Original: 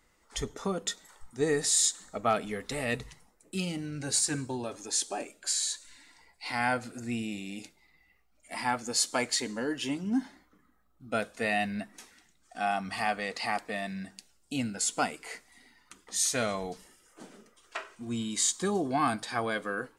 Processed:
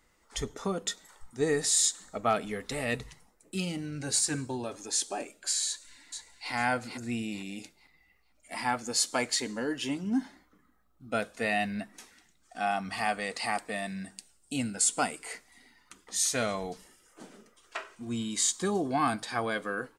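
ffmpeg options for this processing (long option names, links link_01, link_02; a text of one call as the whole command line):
ffmpeg -i in.wav -filter_complex "[0:a]asplit=2[link_01][link_02];[link_02]afade=type=in:start_time=5.67:duration=0.01,afade=type=out:start_time=6.52:duration=0.01,aecho=0:1:450|900|1350|1800:0.501187|0.150356|0.0451069|0.0135321[link_03];[link_01][link_03]amix=inputs=2:normalize=0,asettb=1/sr,asplit=3[link_04][link_05][link_06];[link_04]atrim=end=13.034[link_07];[link_05]atrim=start=13.03:end=15.33,asetpts=PTS-STARTPTS,afade=type=in:duration=0.004:curve=qsin,afade=type=out:start_time=2.296:duration=0.004:curve=qsin,equalizer=frequency=8600:width_type=o:width=0.33:gain=9.5[link_08];[link_06]atrim=start=15.326[link_09];[link_07][link_08]acrossfade=duration=0.004:curve1=hsin:curve2=qsin[link_10];[link_10][link_09]acrossfade=duration=0.004:curve1=qsin:curve2=hsin" out.wav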